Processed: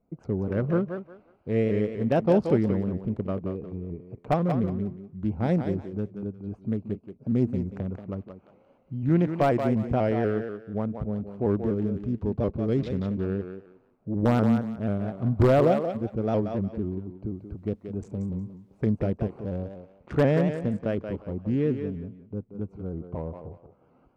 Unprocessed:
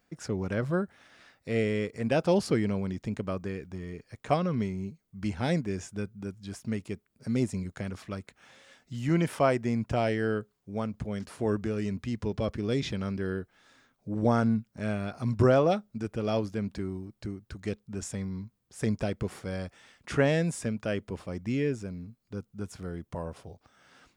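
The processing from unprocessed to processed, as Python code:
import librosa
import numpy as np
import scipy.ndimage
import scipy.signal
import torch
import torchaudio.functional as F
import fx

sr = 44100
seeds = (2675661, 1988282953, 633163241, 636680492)

p1 = fx.wiener(x, sr, points=25)
p2 = (np.mod(10.0 ** (14.5 / 20.0) * p1 + 1.0, 2.0) - 1.0) / 10.0 ** (14.5 / 20.0)
p3 = p1 + F.gain(torch.from_numpy(p2), -4.0).numpy()
p4 = fx.quant_dither(p3, sr, seeds[0], bits=12, dither='triangular', at=(17.28, 18.83))
p5 = fx.lowpass(p4, sr, hz=1000.0, slope=6)
p6 = p5 + fx.echo_thinned(p5, sr, ms=180, feedback_pct=25, hz=310.0, wet_db=-6.0, dry=0)
y = fx.vibrato_shape(p6, sr, shape='saw_up', rate_hz=4.1, depth_cents=100.0)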